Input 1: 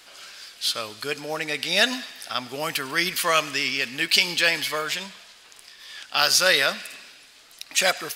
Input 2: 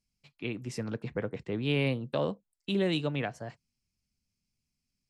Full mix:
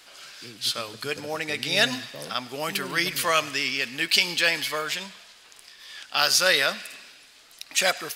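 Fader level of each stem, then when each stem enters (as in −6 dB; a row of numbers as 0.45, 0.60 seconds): −1.5, −10.5 decibels; 0.00, 0.00 seconds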